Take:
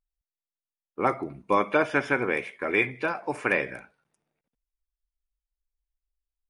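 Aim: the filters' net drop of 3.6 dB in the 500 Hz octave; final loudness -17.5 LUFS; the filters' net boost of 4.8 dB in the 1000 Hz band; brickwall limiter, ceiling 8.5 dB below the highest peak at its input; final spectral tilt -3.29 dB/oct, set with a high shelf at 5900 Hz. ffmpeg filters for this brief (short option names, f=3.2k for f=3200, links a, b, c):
-af "equalizer=f=500:t=o:g=-6.5,equalizer=f=1k:t=o:g=7.5,highshelf=f=5.9k:g=-3.5,volume=12dB,alimiter=limit=-3.5dB:level=0:latency=1"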